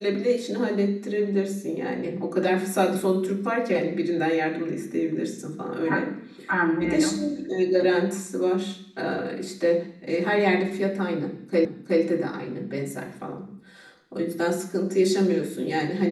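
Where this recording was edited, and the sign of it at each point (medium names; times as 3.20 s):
11.65 s: repeat of the last 0.37 s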